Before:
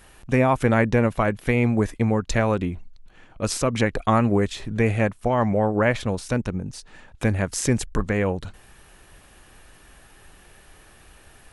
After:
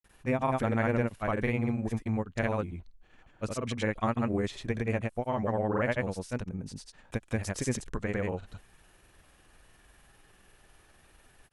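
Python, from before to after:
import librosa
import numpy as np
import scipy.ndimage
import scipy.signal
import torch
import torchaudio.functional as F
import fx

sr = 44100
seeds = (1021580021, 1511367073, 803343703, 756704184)

y = fx.granulator(x, sr, seeds[0], grain_ms=100.0, per_s=20.0, spray_ms=100.0, spread_st=0)
y = F.gain(torch.from_numpy(y), -8.0).numpy()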